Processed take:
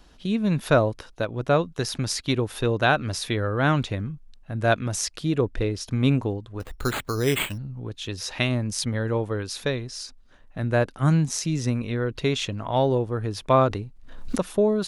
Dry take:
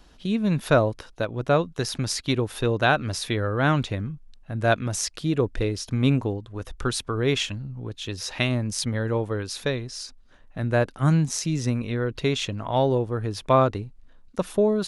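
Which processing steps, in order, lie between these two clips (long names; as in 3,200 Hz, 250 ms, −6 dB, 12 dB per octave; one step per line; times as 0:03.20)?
0:05.41–0:05.81: high-shelf EQ 5,100 Hz −6 dB
0:06.60–0:07.58: bad sample-rate conversion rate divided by 8×, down none, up hold
0:13.68–0:14.49: background raised ahead of every attack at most 58 dB per second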